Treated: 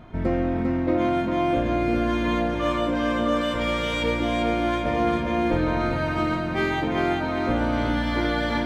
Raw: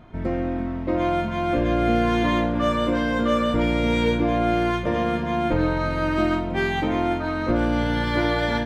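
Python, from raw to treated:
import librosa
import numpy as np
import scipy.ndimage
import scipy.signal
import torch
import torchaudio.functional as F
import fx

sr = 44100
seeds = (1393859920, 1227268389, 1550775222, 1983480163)

y = fx.tilt_shelf(x, sr, db=-5.5, hz=1300.0, at=(3.41, 4.03))
y = fx.rider(y, sr, range_db=10, speed_s=0.5)
y = fx.echo_feedback(y, sr, ms=398, feedback_pct=47, wet_db=-4.5)
y = F.gain(torch.from_numpy(y), -2.5).numpy()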